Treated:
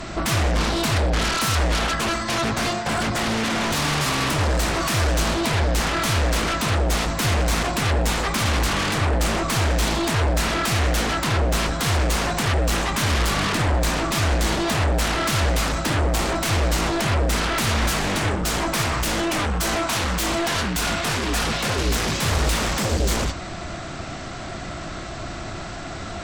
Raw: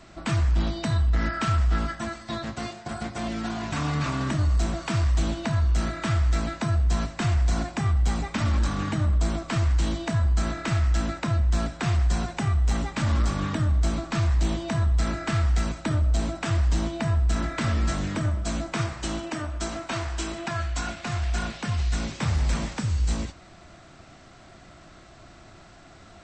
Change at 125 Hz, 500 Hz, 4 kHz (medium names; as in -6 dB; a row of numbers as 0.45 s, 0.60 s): +0.5 dB, +9.5 dB, +12.5 dB